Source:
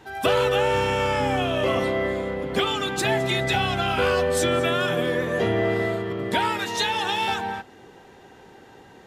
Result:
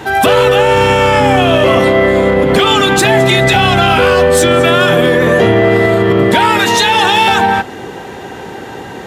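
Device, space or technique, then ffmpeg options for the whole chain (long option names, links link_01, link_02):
mastering chain: -af "highpass=56,equalizer=frequency=5000:width_type=o:width=0.77:gain=-2.5,acompressor=threshold=-27dB:ratio=2,asoftclip=type=tanh:threshold=-17.5dB,alimiter=level_in=22.5dB:limit=-1dB:release=50:level=0:latency=1,volume=-1dB"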